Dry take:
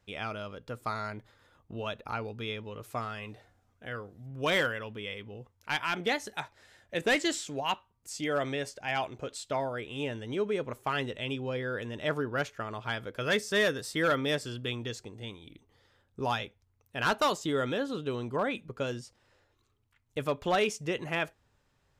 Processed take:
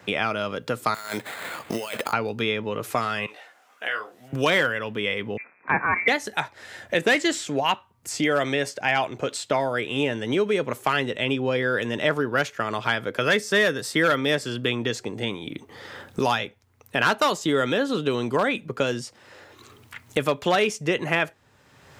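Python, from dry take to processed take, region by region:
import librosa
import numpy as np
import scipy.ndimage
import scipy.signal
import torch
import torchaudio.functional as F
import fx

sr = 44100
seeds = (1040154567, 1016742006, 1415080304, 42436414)

y = fx.chain(x, sr, fx.riaa(side='recording'),
    fx.over_compress(threshold_db=-46.0, ratio=-1.0),
    fx.sample_hold(seeds[0], rate_hz=5700.0, jitter_pct=0), at=(0.94, 2.13))
y = fx.chain(y, sr, fx.highpass(hz=730.0, slope=12),
    fx.peak_eq(hz=2800.0, db=5.0, octaves=0.33),
    fx.detune_double(cents=28), at=(3.26, 4.33))
y = fx.chain(y, sr, fx.crossing_spikes(level_db=-29.0),
    fx.freq_invert(carrier_hz=2500),
    fx.band_widen(depth_pct=100), at=(5.37, 6.08))
y = scipy.signal.sosfilt(scipy.signal.butter(2, 130.0, 'highpass', fs=sr, output='sos'), y)
y = fx.peak_eq(y, sr, hz=1900.0, db=2.5, octaves=0.77)
y = fx.band_squash(y, sr, depth_pct=70)
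y = y * 10.0 ** (8.0 / 20.0)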